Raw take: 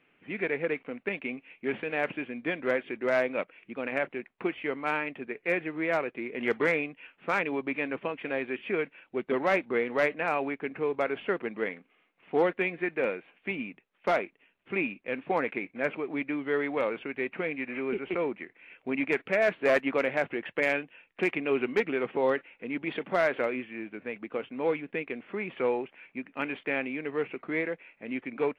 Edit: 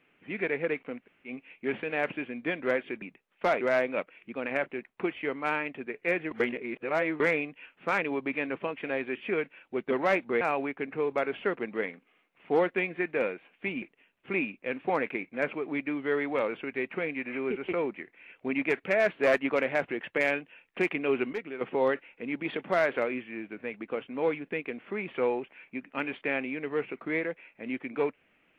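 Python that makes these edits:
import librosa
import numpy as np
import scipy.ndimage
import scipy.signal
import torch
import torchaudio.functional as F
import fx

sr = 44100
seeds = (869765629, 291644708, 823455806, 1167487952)

y = fx.edit(x, sr, fx.room_tone_fill(start_s=1.03, length_s=0.26, crossfade_s=0.1),
    fx.reverse_span(start_s=5.72, length_s=0.89),
    fx.cut(start_s=9.82, length_s=0.42),
    fx.move(start_s=13.65, length_s=0.59, to_s=3.02),
    fx.clip_gain(start_s=21.75, length_s=0.28, db=-9.0), tone=tone)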